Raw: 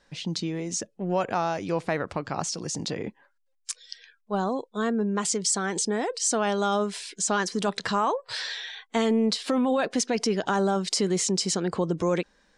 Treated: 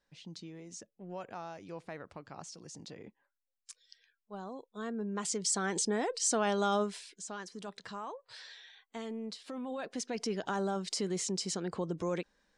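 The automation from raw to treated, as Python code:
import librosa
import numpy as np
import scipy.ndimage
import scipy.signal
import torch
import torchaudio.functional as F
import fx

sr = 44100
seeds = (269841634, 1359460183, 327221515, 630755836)

y = fx.gain(x, sr, db=fx.line((4.41, -17.0), (5.64, -5.0), (6.81, -5.0), (7.24, -17.5), (9.5, -17.5), (10.3, -9.5)))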